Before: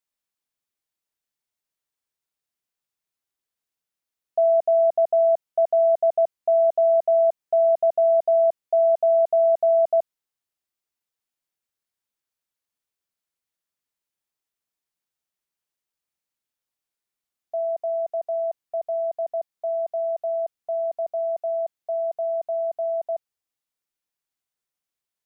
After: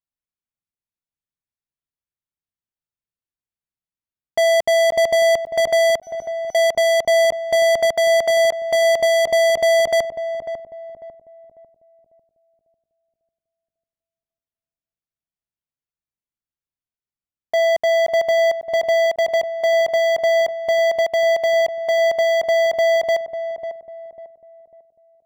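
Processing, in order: tone controls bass +12 dB, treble -6 dB; sample leveller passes 5; 5.96–6.55 resonator 750 Hz, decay 0.45 s, mix 100%; on a send: darkening echo 0.547 s, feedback 42%, low-pass 800 Hz, level -7.5 dB

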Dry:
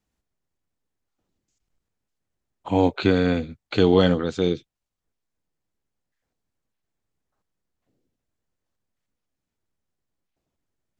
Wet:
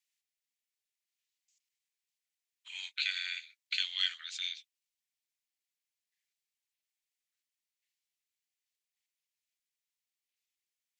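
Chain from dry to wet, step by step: steep high-pass 2000 Hz 36 dB/oct

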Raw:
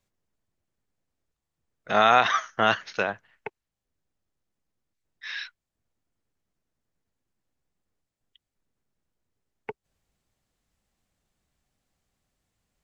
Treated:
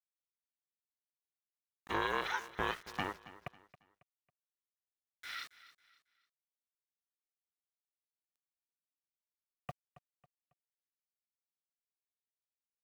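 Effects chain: notches 50/100/150/200/250/300 Hz; compressor 3:1, threshold -23 dBFS, peak gain reduction 8 dB; sample gate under -41.5 dBFS; ring modulator 290 Hz; feedback echo 0.274 s, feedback 35%, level -17 dB; gain -6 dB

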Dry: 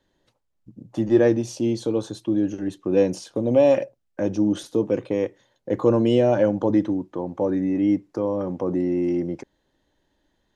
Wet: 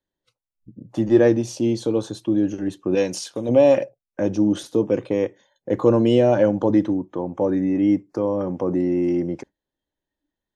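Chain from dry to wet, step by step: spectral noise reduction 19 dB; 2.95–3.49 tilt shelf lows -6.5 dB, about 1100 Hz; gain +2 dB

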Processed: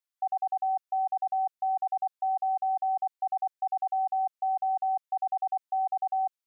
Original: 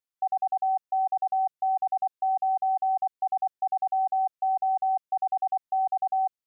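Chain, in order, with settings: HPF 700 Hz 6 dB/oct

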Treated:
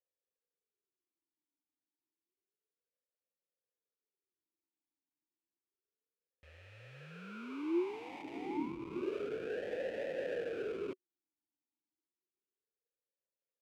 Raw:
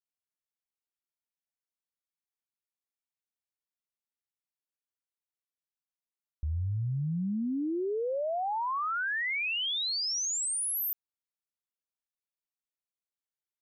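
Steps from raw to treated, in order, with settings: sample-rate reducer 1200 Hz, jitter 20%; vowel sweep e-u 0.3 Hz; gain +3 dB

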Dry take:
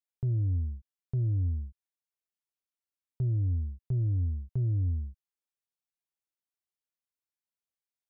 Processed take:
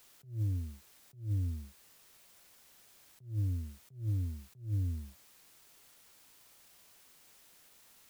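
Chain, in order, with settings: HPF 100 Hz 24 dB/oct; vibrato 0.57 Hz 38 cents; in parallel at -11 dB: requantised 8-bit, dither triangular; on the sum: attack slew limiter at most 160 dB/s; gain -2.5 dB

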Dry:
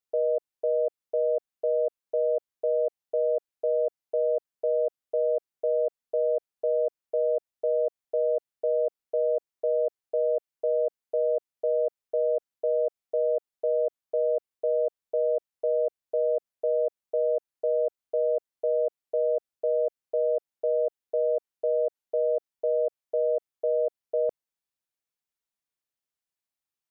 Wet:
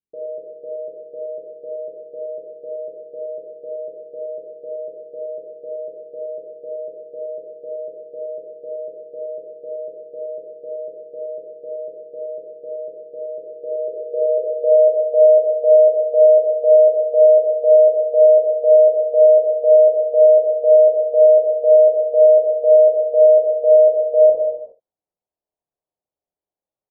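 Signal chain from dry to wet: early reflections 26 ms -9.5 dB, 71 ms -17 dB; non-linear reverb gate 0.44 s falling, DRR -3.5 dB; low-pass sweep 280 Hz -> 660 Hz, 13.33–15.09

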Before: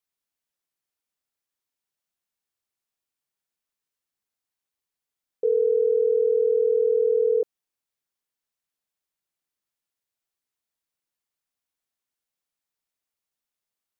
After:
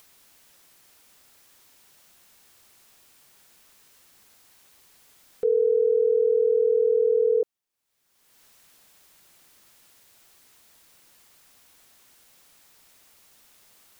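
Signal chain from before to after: upward compressor, threshold -33 dBFS

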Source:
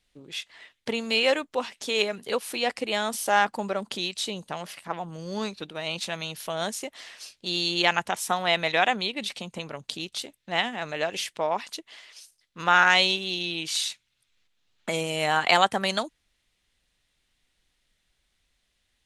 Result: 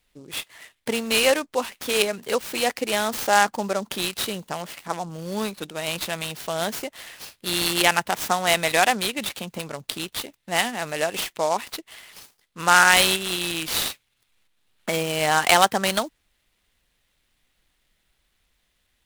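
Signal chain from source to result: noise-modulated delay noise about 5700 Hz, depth 0.033 ms; gain +3.5 dB

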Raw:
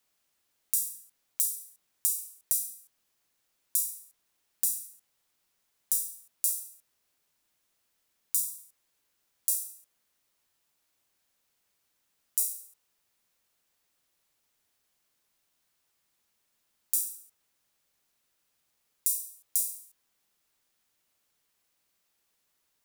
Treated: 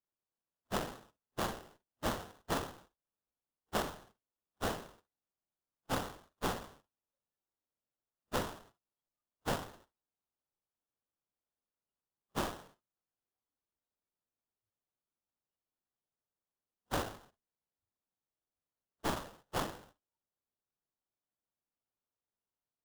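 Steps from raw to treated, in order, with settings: inharmonic rescaling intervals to 84%; low shelf 360 Hz +8 dB; analogue delay 0.27 s, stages 2048, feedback 76%, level -6.5 dB; sample-rate reducer 2300 Hz, jitter 20%; spectral noise reduction 18 dB; gain -6 dB

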